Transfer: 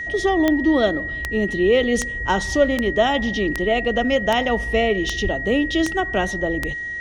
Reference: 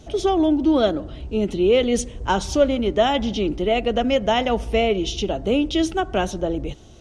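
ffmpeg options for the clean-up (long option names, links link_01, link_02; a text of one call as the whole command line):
ffmpeg -i in.wav -filter_complex "[0:a]adeclick=threshold=4,bandreject=frequency=1900:width=30,asplit=3[link_01][link_02][link_03];[link_01]afade=type=out:start_time=5.23:duration=0.02[link_04];[link_02]highpass=frequency=140:width=0.5412,highpass=frequency=140:width=1.3066,afade=type=in:start_time=5.23:duration=0.02,afade=type=out:start_time=5.35:duration=0.02[link_05];[link_03]afade=type=in:start_time=5.35:duration=0.02[link_06];[link_04][link_05][link_06]amix=inputs=3:normalize=0" out.wav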